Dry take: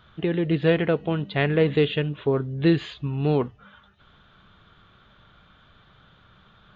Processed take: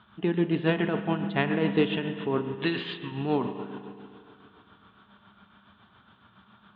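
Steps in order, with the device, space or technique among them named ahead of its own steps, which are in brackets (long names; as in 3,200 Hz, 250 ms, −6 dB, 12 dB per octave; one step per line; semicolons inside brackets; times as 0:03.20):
0:02.54–0:03.12: tilt shelving filter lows −7.5 dB
combo amplifier with spring reverb and tremolo (spring reverb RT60 2.5 s, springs 35/50 ms, chirp 70 ms, DRR 7 dB; amplitude tremolo 7.2 Hz, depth 50%; loudspeaker in its box 110–3,600 Hz, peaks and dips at 150 Hz −8 dB, 210 Hz +8 dB, 510 Hz −9 dB, 940 Hz +6 dB, 2,100 Hz −4 dB)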